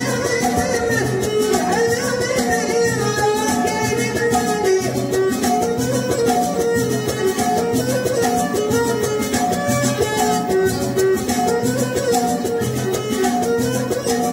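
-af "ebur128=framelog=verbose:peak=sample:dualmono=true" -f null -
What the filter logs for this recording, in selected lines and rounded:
Integrated loudness:
  I:         -15.4 LUFS
  Threshold: -25.4 LUFS
Loudness range:
  LRA:         0.7 LU
  Threshold: -35.3 LUFS
  LRA low:   -15.7 LUFS
  LRA high:  -15.0 LUFS
Sample peak:
  Peak:       -5.6 dBFS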